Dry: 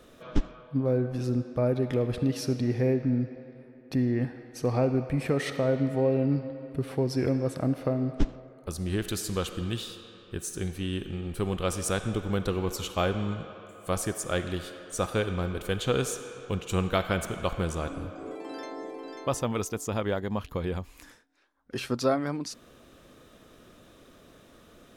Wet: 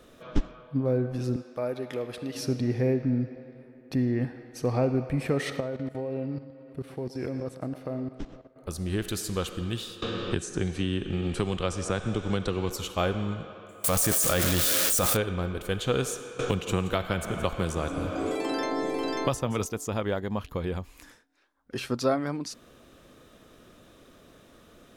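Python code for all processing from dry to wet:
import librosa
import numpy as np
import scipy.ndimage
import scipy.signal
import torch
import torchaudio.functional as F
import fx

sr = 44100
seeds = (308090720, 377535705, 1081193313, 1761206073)

y = fx.chain(x, sr, fx.highpass(hz=640.0, slope=6),
    fx.high_shelf(hz=8300.0, db=4.5), at=(1.36, 2.35))
y = fx.chain(y, sr, fx.low_shelf(hz=110.0, db=-6.5),
    fx.level_steps(step_db=16),
    fx.echo_single(ms=120, db=-15.5), at=(5.6, 8.56))
y = fx.chain(y, sr, fx.lowpass(hz=8300.0, slope=24),
    fx.band_squash(depth_pct=100), at=(10.02, 12.7))
y = fx.chain(y, sr, fx.crossing_spikes(level_db=-23.0),
    fx.notch(hz=380.0, q=5.9),
    fx.env_flatten(amount_pct=100), at=(13.84, 15.17))
y = fx.chain(y, sr, fx.echo_single(ms=169, db=-16.0),
    fx.band_squash(depth_pct=100), at=(16.39, 19.66))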